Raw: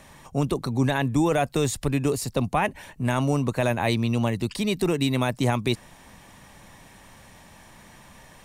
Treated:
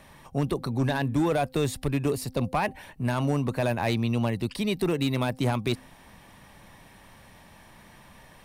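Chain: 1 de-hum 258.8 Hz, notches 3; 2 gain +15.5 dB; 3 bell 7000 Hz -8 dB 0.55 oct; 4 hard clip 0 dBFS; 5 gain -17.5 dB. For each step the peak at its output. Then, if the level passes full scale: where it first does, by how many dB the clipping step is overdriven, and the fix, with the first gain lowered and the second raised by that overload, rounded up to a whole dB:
-10.0, +5.5, +5.5, 0.0, -17.5 dBFS; step 2, 5.5 dB; step 2 +9.5 dB, step 5 -11.5 dB

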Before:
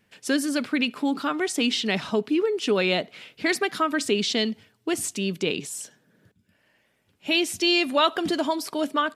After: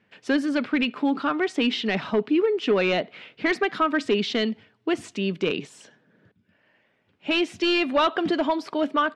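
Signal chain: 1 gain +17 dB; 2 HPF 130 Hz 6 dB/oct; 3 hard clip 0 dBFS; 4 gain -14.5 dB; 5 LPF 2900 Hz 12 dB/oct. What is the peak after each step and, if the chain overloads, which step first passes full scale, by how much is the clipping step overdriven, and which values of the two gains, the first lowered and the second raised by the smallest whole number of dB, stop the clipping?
+9.0, +9.5, 0.0, -14.5, -14.0 dBFS; step 1, 9.5 dB; step 1 +7 dB, step 4 -4.5 dB

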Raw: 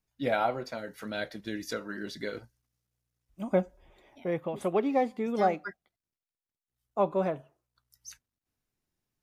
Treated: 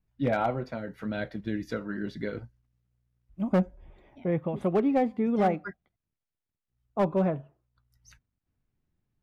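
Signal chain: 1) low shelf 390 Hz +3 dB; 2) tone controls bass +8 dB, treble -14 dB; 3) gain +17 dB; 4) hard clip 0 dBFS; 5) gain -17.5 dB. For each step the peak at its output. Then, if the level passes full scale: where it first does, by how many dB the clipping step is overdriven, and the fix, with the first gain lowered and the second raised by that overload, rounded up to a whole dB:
-12.5, -11.0, +6.0, 0.0, -17.5 dBFS; step 3, 6.0 dB; step 3 +11 dB, step 5 -11.5 dB

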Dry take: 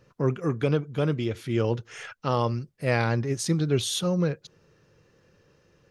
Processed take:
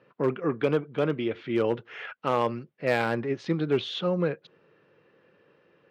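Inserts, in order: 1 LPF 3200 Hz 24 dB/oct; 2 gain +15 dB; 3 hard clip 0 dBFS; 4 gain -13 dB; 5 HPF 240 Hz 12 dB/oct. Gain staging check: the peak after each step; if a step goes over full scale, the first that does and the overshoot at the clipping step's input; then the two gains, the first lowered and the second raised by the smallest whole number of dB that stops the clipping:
-9.5, +5.5, 0.0, -13.0, -11.5 dBFS; step 2, 5.5 dB; step 2 +9 dB, step 4 -7 dB

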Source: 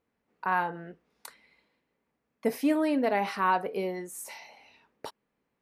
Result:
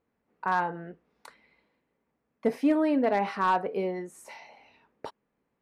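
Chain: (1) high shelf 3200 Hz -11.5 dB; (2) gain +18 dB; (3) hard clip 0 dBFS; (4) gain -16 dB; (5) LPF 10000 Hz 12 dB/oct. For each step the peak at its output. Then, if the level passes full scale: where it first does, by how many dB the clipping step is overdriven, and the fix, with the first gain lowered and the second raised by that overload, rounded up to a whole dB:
-14.5, +3.5, 0.0, -16.0, -16.0 dBFS; step 2, 3.5 dB; step 2 +14 dB, step 4 -12 dB

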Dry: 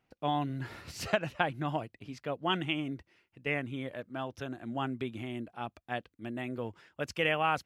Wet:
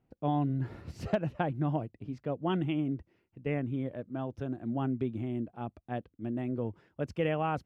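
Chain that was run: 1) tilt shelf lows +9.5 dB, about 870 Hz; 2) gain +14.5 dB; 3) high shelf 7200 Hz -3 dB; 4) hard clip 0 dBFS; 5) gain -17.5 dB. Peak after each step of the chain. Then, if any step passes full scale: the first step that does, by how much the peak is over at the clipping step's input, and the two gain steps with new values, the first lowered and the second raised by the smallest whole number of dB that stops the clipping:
-10.5, +4.0, +4.0, 0.0, -17.5 dBFS; step 2, 4.0 dB; step 2 +10.5 dB, step 5 -13.5 dB

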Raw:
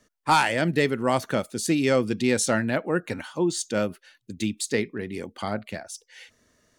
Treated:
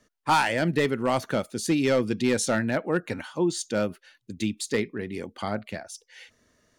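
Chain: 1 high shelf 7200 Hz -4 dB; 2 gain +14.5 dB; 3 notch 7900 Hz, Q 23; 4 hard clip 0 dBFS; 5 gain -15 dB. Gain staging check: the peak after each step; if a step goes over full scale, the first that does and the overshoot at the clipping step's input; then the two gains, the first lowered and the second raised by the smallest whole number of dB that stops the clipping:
-9.5, +5.0, +5.0, 0.0, -15.0 dBFS; step 2, 5.0 dB; step 2 +9.5 dB, step 5 -10 dB

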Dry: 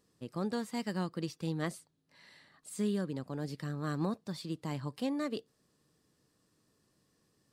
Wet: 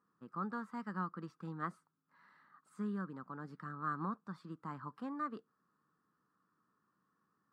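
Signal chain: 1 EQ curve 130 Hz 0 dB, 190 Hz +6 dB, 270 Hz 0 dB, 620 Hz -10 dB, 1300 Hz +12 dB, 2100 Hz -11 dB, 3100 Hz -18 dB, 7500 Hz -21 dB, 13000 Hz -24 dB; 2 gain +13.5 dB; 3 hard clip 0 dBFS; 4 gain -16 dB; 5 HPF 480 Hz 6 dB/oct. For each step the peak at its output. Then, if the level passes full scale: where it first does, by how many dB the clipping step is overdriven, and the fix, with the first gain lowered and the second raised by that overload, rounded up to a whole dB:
-19.0, -5.5, -5.5, -21.5, -26.0 dBFS; no overload

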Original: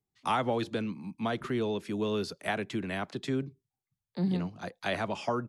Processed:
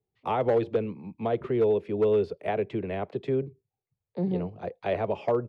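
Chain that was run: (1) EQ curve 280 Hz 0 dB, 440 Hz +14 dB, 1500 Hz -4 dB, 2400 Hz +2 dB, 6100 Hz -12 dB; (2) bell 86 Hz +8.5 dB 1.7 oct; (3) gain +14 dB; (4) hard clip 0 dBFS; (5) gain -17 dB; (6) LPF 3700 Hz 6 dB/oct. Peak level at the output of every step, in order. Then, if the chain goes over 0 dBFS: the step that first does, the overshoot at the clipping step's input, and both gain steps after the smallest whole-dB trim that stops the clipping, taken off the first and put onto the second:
-10.0, -9.5, +4.5, 0.0, -17.0, -17.0 dBFS; step 3, 4.5 dB; step 3 +9 dB, step 5 -12 dB

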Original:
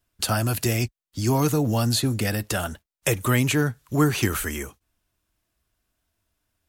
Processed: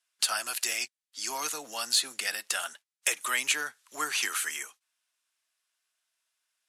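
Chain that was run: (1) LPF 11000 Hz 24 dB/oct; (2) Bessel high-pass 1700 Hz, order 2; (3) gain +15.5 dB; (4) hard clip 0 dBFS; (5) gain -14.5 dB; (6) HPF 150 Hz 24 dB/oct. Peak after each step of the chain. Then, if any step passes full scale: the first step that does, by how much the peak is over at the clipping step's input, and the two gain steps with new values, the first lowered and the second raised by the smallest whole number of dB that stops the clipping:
-8.0, -9.0, +6.5, 0.0, -14.5, -13.5 dBFS; step 3, 6.5 dB; step 3 +8.5 dB, step 5 -7.5 dB

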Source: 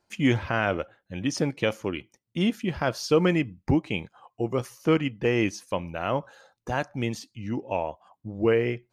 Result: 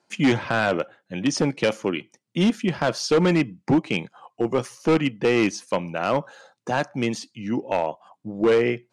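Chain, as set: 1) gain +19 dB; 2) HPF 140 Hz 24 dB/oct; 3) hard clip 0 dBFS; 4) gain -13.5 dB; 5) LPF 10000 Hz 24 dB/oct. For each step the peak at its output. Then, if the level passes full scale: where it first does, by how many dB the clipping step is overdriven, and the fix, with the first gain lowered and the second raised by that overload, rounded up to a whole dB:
+10.0, +10.0, 0.0, -13.5, -12.5 dBFS; step 1, 10.0 dB; step 1 +9 dB, step 4 -3.5 dB

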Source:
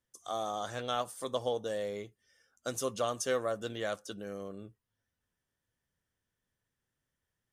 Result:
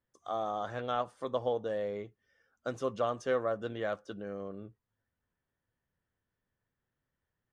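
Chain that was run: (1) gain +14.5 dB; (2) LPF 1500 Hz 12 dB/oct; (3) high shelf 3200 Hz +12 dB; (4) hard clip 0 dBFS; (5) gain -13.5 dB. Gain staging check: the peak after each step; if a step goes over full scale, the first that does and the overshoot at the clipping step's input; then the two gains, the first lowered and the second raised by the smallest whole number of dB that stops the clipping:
-4.5, -6.5, -5.5, -5.5, -19.0 dBFS; no overload

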